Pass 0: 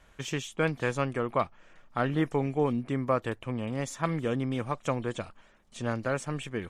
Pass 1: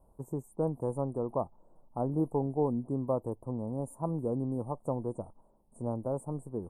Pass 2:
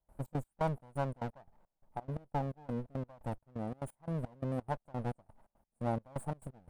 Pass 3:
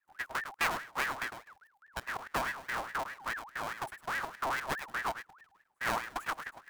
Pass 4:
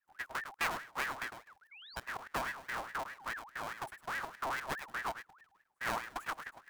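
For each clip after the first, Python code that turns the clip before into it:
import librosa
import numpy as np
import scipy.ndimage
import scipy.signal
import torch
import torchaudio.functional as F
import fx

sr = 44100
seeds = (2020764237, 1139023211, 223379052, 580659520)

y1 = scipy.signal.sosfilt(scipy.signal.cheby1(4, 1.0, [950.0, 9100.0], 'bandstop', fs=sr, output='sos'), x)
y1 = y1 * librosa.db_to_amplitude(-2.0)
y2 = fx.lower_of_two(y1, sr, delay_ms=1.3)
y2 = fx.rider(y2, sr, range_db=10, speed_s=2.0)
y2 = fx.step_gate(y2, sr, bpm=173, pattern='.xx.x..xx.', floor_db=-24.0, edge_ms=4.5)
y2 = y2 * librosa.db_to_amplitude(-1.0)
y3 = fx.halfwave_hold(y2, sr)
y3 = y3 + 10.0 ** (-9.5 / 20.0) * np.pad(y3, (int(104 * sr / 1000.0), 0))[:len(y3)]
y3 = fx.ring_lfo(y3, sr, carrier_hz=1300.0, swing_pct=40, hz=4.8)
y4 = fx.spec_paint(y3, sr, seeds[0], shape='rise', start_s=1.71, length_s=0.25, low_hz=2100.0, high_hz=5000.0, level_db=-50.0)
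y4 = y4 * librosa.db_to_amplitude(-3.5)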